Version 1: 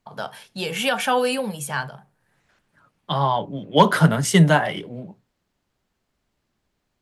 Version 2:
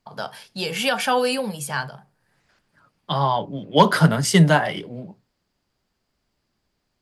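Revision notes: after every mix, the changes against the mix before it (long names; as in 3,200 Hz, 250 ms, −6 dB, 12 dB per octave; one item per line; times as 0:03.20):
master: add parametric band 4,800 Hz +9 dB 0.22 octaves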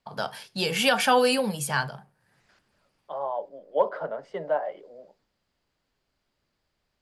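second voice: add four-pole ladder band-pass 620 Hz, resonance 60%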